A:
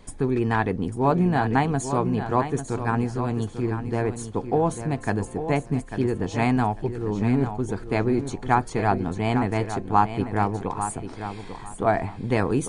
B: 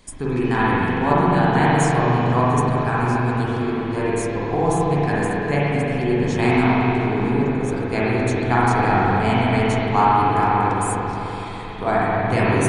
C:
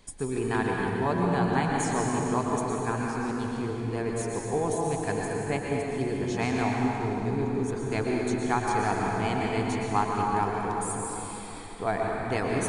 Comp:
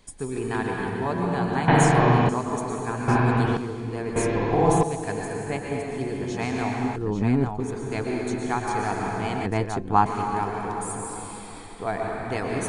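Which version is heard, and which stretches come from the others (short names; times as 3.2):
C
1.68–2.29 from B
3.08–3.57 from B
4.16–4.83 from B
6.96–7.6 from A
9.46–10.06 from A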